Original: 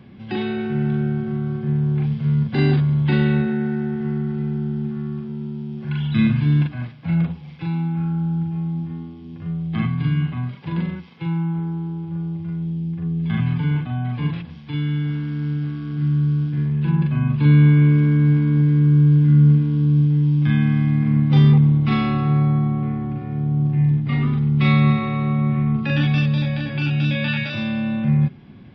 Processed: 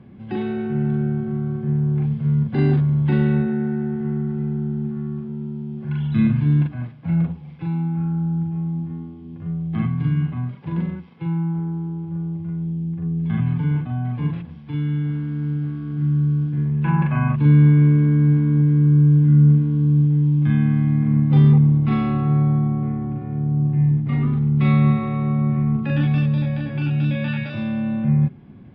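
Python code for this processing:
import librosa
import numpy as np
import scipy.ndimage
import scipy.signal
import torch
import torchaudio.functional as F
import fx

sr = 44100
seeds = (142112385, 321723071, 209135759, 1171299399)

y = fx.band_shelf(x, sr, hz=1300.0, db=13.0, octaves=2.5, at=(16.84, 17.36))
y = fx.lowpass(y, sr, hz=1100.0, slope=6)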